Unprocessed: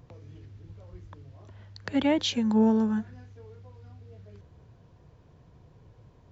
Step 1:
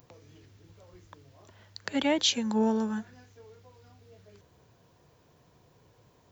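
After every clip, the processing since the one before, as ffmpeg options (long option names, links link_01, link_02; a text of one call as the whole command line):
ffmpeg -i in.wav -af "aemphasis=mode=production:type=bsi" out.wav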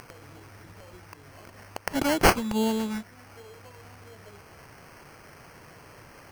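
ffmpeg -i in.wav -af "crystalizer=i=3.5:c=0,acrusher=samples=12:mix=1:aa=0.000001,acompressor=mode=upward:threshold=-40dB:ratio=2.5" out.wav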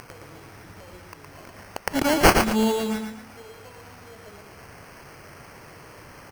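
ffmpeg -i in.wav -af "aecho=1:1:115|230|345|460:0.531|0.175|0.0578|0.0191,volume=3dB" out.wav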